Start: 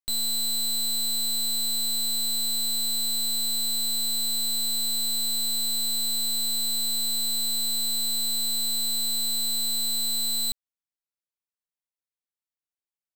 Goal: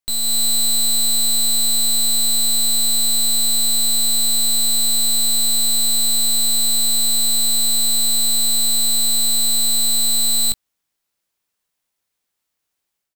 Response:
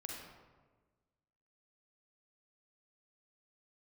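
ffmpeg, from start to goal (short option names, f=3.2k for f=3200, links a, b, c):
-filter_complex "[0:a]dynaudnorm=f=220:g=3:m=10.5dB,asoftclip=type=tanh:threshold=-22dB,asplit=2[a][b];[b]adelay=19,volume=-11.5dB[c];[a][c]amix=inputs=2:normalize=0,volume=6dB"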